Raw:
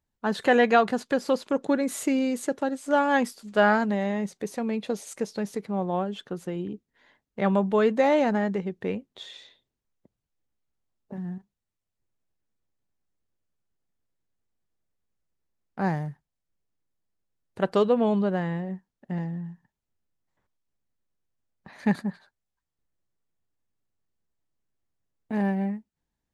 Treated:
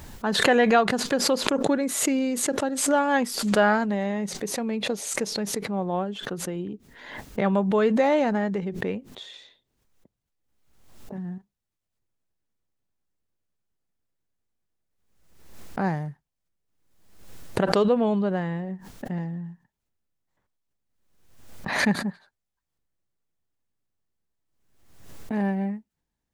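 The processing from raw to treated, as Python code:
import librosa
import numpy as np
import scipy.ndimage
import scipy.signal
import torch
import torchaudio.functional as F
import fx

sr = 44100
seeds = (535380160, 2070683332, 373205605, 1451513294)

y = fx.pre_swell(x, sr, db_per_s=57.0)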